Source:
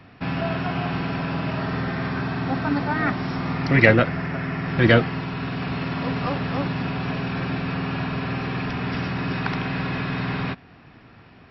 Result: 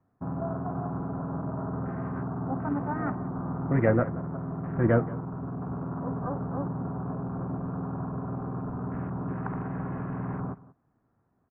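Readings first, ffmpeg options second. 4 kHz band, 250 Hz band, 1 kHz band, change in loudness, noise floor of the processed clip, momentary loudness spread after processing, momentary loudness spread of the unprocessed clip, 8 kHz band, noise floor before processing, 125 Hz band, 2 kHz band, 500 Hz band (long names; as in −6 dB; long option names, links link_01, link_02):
below −40 dB, −6.0 dB, −7.5 dB, −7.5 dB, −72 dBFS, 10 LU, 10 LU, can't be measured, −49 dBFS, −6.0 dB, −17.5 dB, −6.0 dB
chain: -af "afwtdn=0.0355,lowpass=frequency=1300:width=0.5412,lowpass=frequency=1300:width=1.3066,aecho=1:1:180:0.112,volume=-6dB"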